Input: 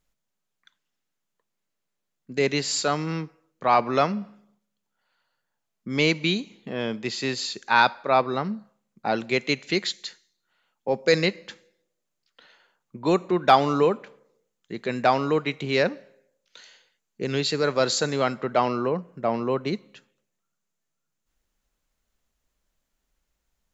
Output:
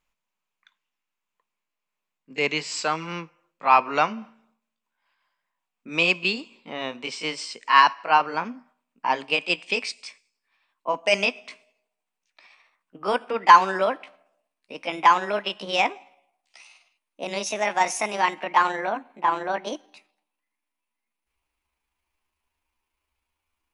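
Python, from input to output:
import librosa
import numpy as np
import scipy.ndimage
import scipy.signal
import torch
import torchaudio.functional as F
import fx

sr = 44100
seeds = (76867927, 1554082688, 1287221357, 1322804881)

y = fx.pitch_glide(x, sr, semitones=8.0, runs='starting unshifted')
y = fx.graphic_eq_15(y, sr, hz=(100, 1000, 2500), db=(-11, 11, 11))
y = F.gain(torch.from_numpy(y), -4.5).numpy()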